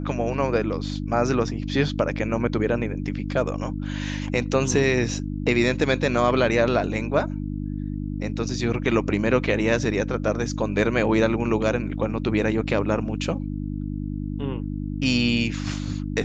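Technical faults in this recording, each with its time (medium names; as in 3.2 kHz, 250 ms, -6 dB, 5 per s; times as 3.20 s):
hum 50 Hz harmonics 6 -29 dBFS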